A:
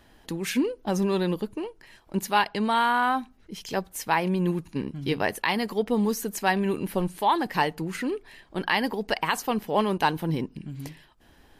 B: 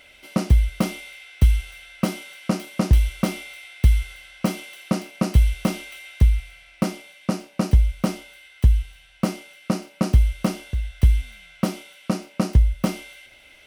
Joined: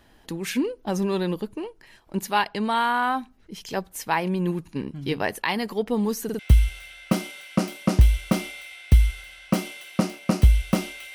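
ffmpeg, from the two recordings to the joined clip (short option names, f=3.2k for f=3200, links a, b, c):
-filter_complex "[0:a]apad=whole_dur=11.14,atrim=end=11.14,asplit=3[a][b][c];[a]atrim=end=6.292[d];[b]atrim=start=6.238:end=6.292[e];[c]atrim=start=6.238:end=6.292[f];[1:a]atrim=start=1.308:end=6.06[g];[d][e]acrossfade=d=0.004:c1=hsin:c2=hsin[h];[h][f]acrossfade=d=0.004:c1=hsin:c2=hsin[i];[i][g]acrossfade=d=0.004:c1=hsin:c2=hsin"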